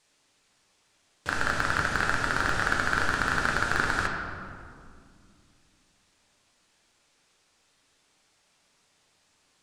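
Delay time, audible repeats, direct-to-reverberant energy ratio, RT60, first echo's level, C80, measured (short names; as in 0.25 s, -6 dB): none, none, 0.0 dB, 2.2 s, none, 4.5 dB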